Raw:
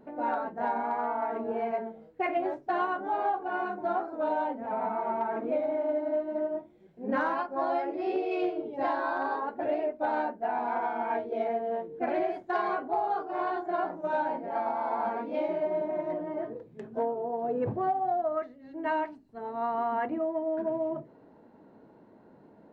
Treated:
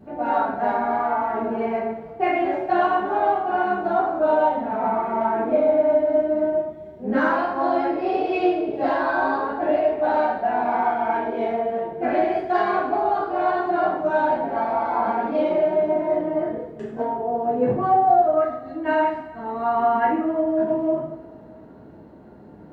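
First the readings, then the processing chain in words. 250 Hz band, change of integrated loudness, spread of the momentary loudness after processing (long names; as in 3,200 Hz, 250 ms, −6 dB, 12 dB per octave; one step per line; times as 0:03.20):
+9.5 dB, +9.0 dB, 7 LU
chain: coupled-rooms reverb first 0.64 s, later 2.5 s, DRR −8 dB
noise in a band 50–280 Hz −52 dBFS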